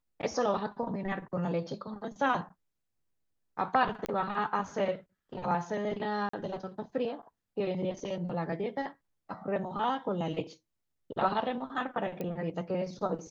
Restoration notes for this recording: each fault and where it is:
4.06 s: pop -18 dBFS
6.29–6.33 s: dropout 44 ms
12.21 s: pop -23 dBFS

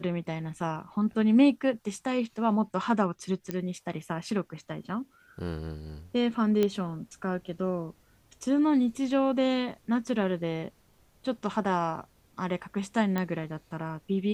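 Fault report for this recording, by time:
3.51 s: pop -17 dBFS
6.63 s: pop -14 dBFS
13.18 s: pop -17 dBFS

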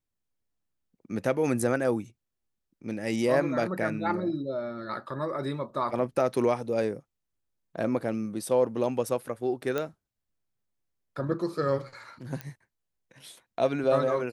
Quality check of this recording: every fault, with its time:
9.78 s: pop -16 dBFS
12.41 s: pop -20 dBFS

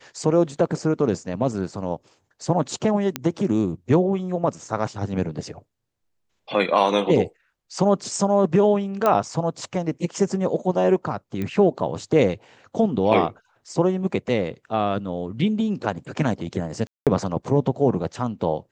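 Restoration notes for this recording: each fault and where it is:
3.16 s: pop -8 dBFS
9.06 s: pop -8 dBFS
11.42 s: pop -16 dBFS
16.87–17.07 s: dropout 197 ms

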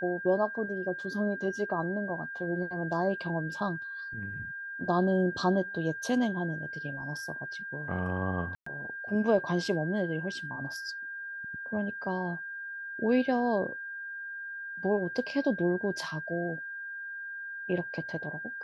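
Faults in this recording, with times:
whine 1.6 kHz -37 dBFS
8.55–8.66 s: dropout 114 ms

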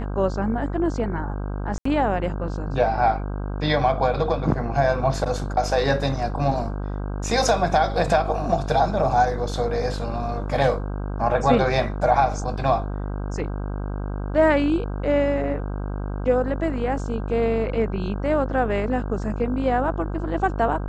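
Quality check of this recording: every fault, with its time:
buzz 50 Hz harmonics 32 -28 dBFS
1.78–1.85 s: dropout 74 ms

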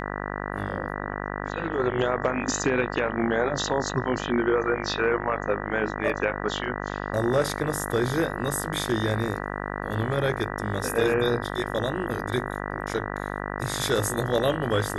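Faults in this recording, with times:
buzz 50 Hz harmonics 39 -32 dBFS

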